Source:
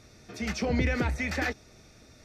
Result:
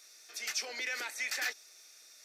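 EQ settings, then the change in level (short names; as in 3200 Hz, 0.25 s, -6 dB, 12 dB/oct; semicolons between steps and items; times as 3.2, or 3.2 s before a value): HPF 320 Hz 24 dB/oct; differentiator; bell 1600 Hz +2.5 dB 0.38 oct; +7.0 dB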